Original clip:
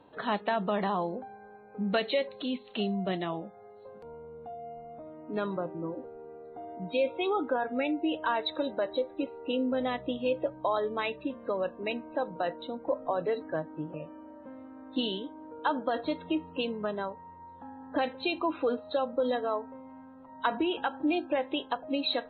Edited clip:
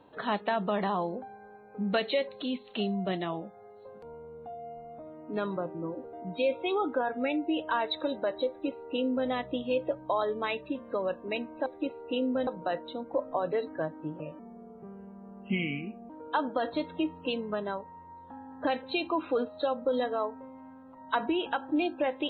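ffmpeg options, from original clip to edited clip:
ffmpeg -i in.wav -filter_complex "[0:a]asplit=6[link_01][link_02][link_03][link_04][link_05][link_06];[link_01]atrim=end=6.132[link_07];[link_02]atrim=start=6.678:end=12.212[link_08];[link_03]atrim=start=9.028:end=9.842[link_09];[link_04]atrim=start=12.208:end=14.134[link_10];[link_05]atrim=start=14.13:end=15.41,asetpts=PTS-STARTPTS,asetrate=33075,aresample=44100[link_11];[link_06]atrim=start=15.406[link_12];[link_07][link_08]acrossfade=duration=0.004:curve1=hsin:curve2=hsin[link_13];[link_13][link_09]acrossfade=duration=0.004:curve1=hsin:curve2=hsin[link_14];[link_14][link_10]acrossfade=duration=0.004:curve1=hsin:curve2=hsin[link_15];[link_15][link_11]acrossfade=duration=0.004:curve1=hsin:curve2=hsin[link_16];[link_16][link_12]acrossfade=duration=0.004:curve1=hsin:curve2=hsin" out.wav

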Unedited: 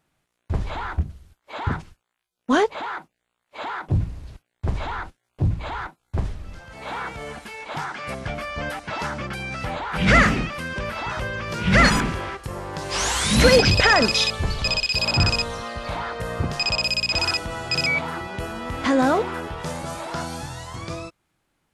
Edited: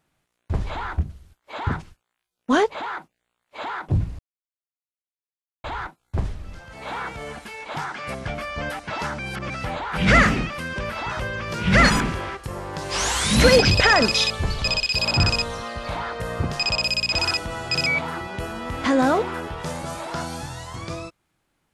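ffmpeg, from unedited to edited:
ffmpeg -i in.wav -filter_complex "[0:a]asplit=5[link_01][link_02][link_03][link_04][link_05];[link_01]atrim=end=4.19,asetpts=PTS-STARTPTS,afade=type=out:start_time=4.186:duration=0.004:curve=hsin[link_06];[link_02]atrim=start=4.19:end=5.64,asetpts=PTS-STARTPTS,volume=0[link_07];[link_03]atrim=start=5.64:end=9.192,asetpts=PTS-STARTPTS,afade=type=in:duration=0.004:curve=hsin[link_08];[link_04]atrim=start=9.188:end=9.502,asetpts=PTS-STARTPTS,areverse[link_09];[link_05]atrim=start=9.498[link_10];[link_06][link_07][link_08]concat=n=3:v=0:a=1[link_11];[link_11][link_09]acrossfade=duration=0.004:curve1=hsin:curve2=hsin[link_12];[link_12][link_10]acrossfade=duration=0.004:curve1=hsin:curve2=hsin" out.wav

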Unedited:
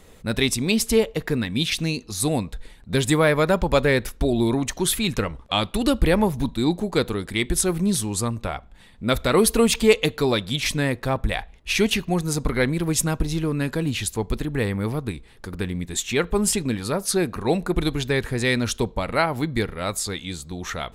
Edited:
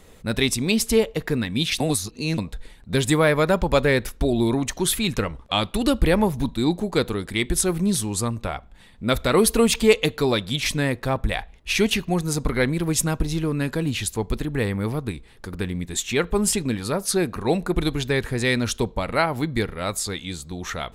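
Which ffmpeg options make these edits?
ffmpeg -i in.wav -filter_complex "[0:a]asplit=3[link_01][link_02][link_03];[link_01]atrim=end=1.802[link_04];[link_02]atrim=start=1.798:end=2.382,asetpts=PTS-STARTPTS,areverse[link_05];[link_03]atrim=start=2.378[link_06];[link_04][link_05]acrossfade=duration=0.004:curve1=hsin:curve2=hsin[link_07];[link_07][link_06]acrossfade=duration=0.004:curve1=hsin:curve2=hsin" out.wav

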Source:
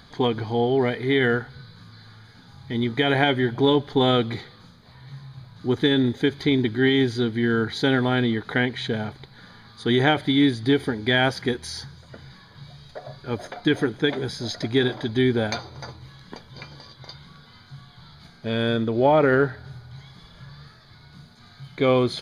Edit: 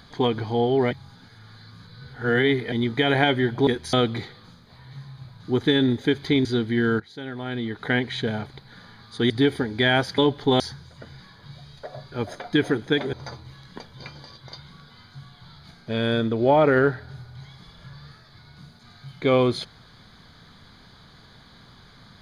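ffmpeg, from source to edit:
ffmpeg -i in.wav -filter_complex "[0:a]asplit=11[link_01][link_02][link_03][link_04][link_05][link_06][link_07][link_08][link_09][link_10][link_11];[link_01]atrim=end=0.912[link_12];[link_02]atrim=start=0.908:end=2.722,asetpts=PTS-STARTPTS,areverse[link_13];[link_03]atrim=start=2.718:end=3.672[link_14];[link_04]atrim=start=11.458:end=11.722[link_15];[link_05]atrim=start=4.088:end=6.612[link_16];[link_06]atrim=start=7.108:end=7.66,asetpts=PTS-STARTPTS,afade=type=out:start_time=0.548:duration=0.004:curve=hsin:silence=0.133352[link_17];[link_07]atrim=start=7.66:end=9.962,asetpts=PTS-STARTPTS,afade=type=in:duration=0.97:curve=qua:silence=0.133352[link_18];[link_08]atrim=start=10.578:end=11.462[link_19];[link_09]atrim=start=3.668:end=4.092[link_20];[link_10]atrim=start=11.718:end=14.252[link_21];[link_11]atrim=start=15.688[link_22];[link_12][link_13]acrossfade=duration=0.004:curve1=hsin:curve2=hsin[link_23];[link_23][link_14]acrossfade=duration=0.004:curve1=hsin:curve2=hsin[link_24];[link_24][link_15]acrossfade=duration=0.004:curve1=hsin:curve2=hsin[link_25];[link_25][link_16]acrossfade=duration=0.004:curve1=hsin:curve2=hsin[link_26];[link_17][link_18]concat=n=2:v=0:a=1[link_27];[link_26][link_27]acrossfade=duration=0.004:curve1=hsin:curve2=hsin[link_28];[link_28][link_19]acrossfade=duration=0.004:curve1=hsin:curve2=hsin[link_29];[link_29][link_20]acrossfade=duration=0.004:curve1=hsin:curve2=hsin[link_30];[link_30][link_21]acrossfade=duration=0.004:curve1=hsin:curve2=hsin[link_31];[link_31][link_22]acrossfade=duration=0.004:curve1=hsin:curve2=hsin" out.wav

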